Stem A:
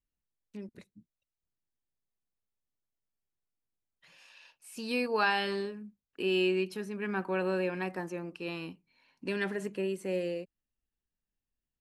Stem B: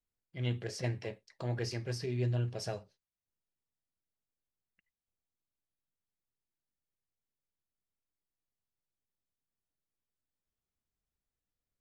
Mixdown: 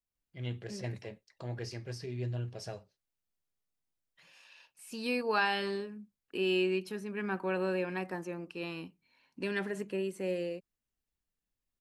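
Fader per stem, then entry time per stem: -1.5 dB, -4.0 dB; 0.15 s, 0.00 s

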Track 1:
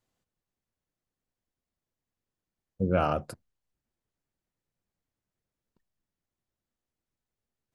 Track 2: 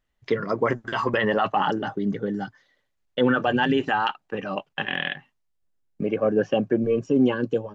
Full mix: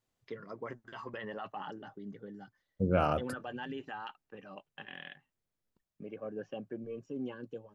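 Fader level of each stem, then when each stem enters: -2.5 dB, -19.5 dB; 0.00 s, 0.00 s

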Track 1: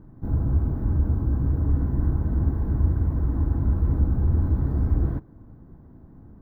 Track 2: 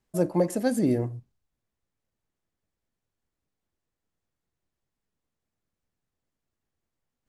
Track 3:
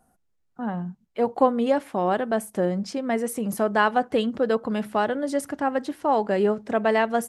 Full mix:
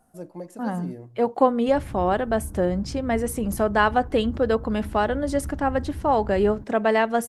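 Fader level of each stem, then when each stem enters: -13.0 dB, -13.5 dB, +1.0 dB; 1.45 s, 0.00 s, 0.00 s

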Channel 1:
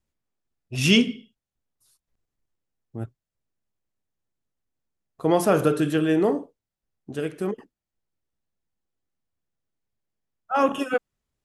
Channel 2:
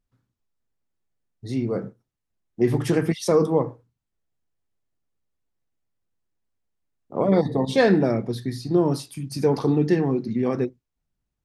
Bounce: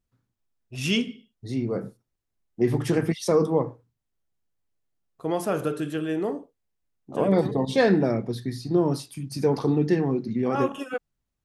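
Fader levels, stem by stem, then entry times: -6.5 dB, -2.0 dB; 0.00 s, 0.00 s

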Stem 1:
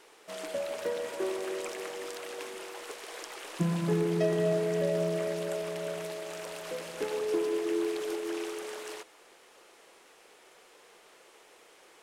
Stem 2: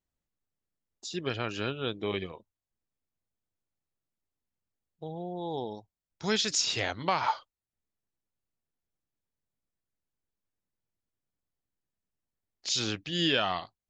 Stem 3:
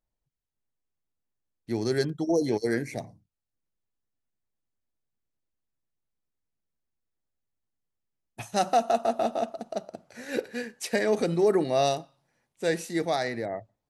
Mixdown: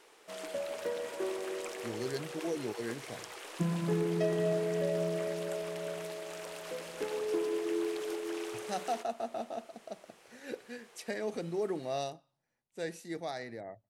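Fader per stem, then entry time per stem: -3.0 dB, mute, -11.5 dB; 0.00 s, mute, 0.15 s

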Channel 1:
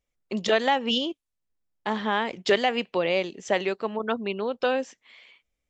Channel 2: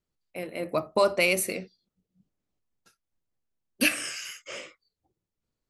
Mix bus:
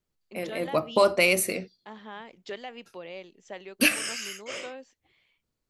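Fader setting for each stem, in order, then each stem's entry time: -16.5 dB, +2.0 dB; 0.00 s, 0.00 s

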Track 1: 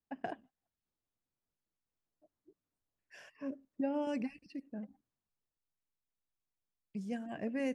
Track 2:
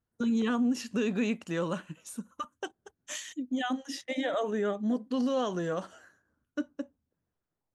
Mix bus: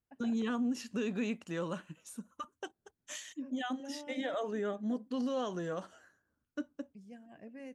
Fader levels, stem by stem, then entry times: -12.5 dB, -5.5 dB; 0.00 s, 0.00 s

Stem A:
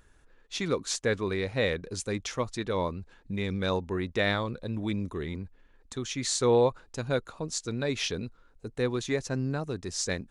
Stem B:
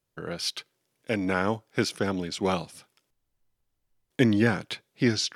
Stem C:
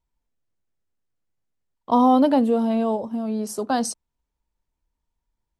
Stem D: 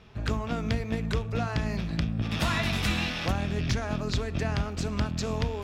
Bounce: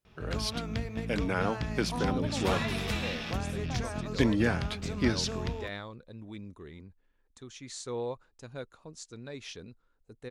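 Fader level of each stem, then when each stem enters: -12.5 dB, -4.5 dB, -19.5 dB, -5.5 dB; 1.45 s, 0.00 s, 0.00 s, 0.05 s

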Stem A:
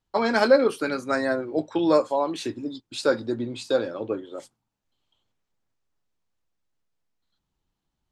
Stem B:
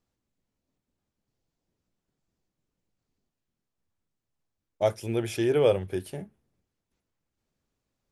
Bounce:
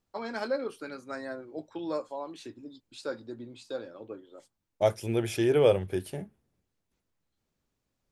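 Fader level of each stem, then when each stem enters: -13.5 dB, 0.0 dB; 0.00 s, 0.00 s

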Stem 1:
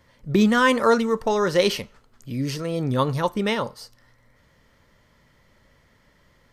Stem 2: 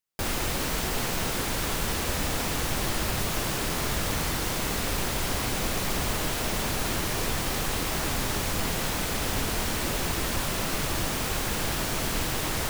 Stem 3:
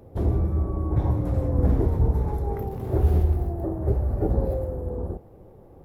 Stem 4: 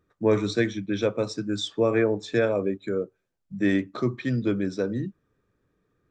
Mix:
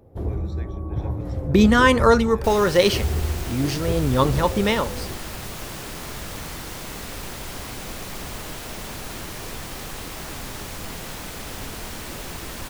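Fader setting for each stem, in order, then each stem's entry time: +2.5 dB, -5.5 dB, -4.0 dB, -19.5 dB; 1.20 s, 2.25 s, 0.00 s, 0.00 s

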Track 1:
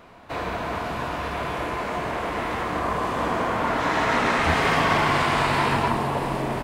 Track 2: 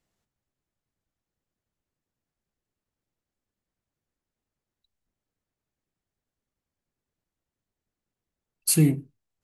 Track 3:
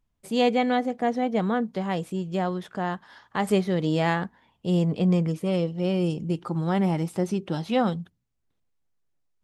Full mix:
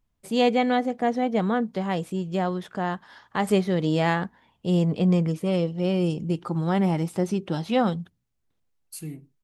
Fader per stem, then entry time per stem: mute, -17.0 dB, +1.0 dB; mute, 0.25 s, 0.00 s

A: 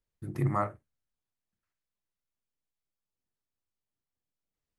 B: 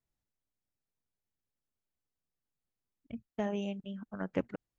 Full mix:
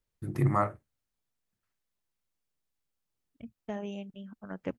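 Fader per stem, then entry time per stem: +2.5 dB, -3.0 dB; 0.00 s, 0.30 s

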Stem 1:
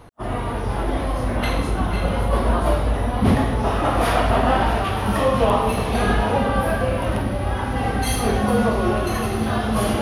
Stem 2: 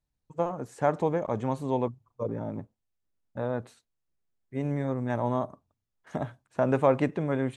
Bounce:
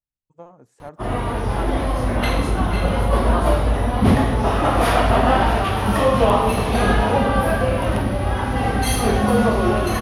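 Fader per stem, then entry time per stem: +2.0 dB, -13.0 dB; 0.80 s, 0.00 s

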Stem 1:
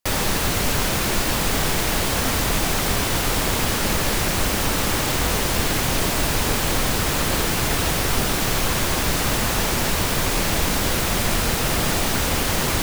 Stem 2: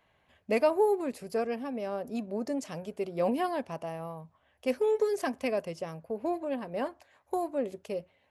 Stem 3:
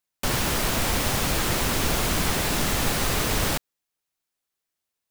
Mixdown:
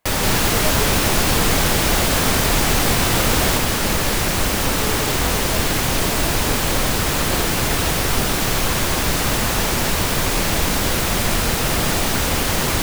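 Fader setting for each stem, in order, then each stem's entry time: +2.0 dB, -4.0 dB, +3.0 dB; 0.00 s, 0.00 s, 0.00 s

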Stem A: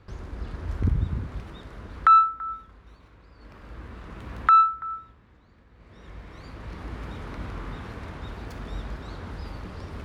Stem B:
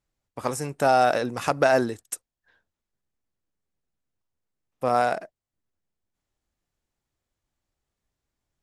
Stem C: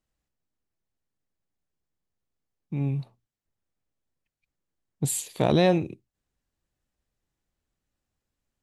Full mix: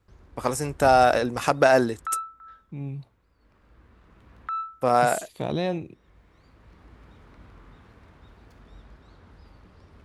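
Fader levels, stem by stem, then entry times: -14.5 dB, +2.0 dB, -6.5 dB; 0.00 s, 0.00 s, 0.00 s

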